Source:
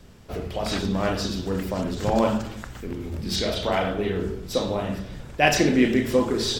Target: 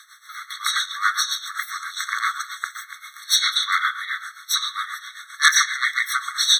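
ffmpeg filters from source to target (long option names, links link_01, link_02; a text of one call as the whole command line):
ffmpeg -i in.wav -af "aeval=exprs='0.668*sin(PI/2*3.55*val(0)/0.668)':channel_layout=same,tremolo=f=7.5:d=0.75,afftfilt=real='re*eq(mod(floor(b*sr/1024/1100),2),1)':imag='im*eq(mod(floor(b*sr/1024/1100),2),1)':win_size=1024:overlap=0.75,volume=2dB" out.wav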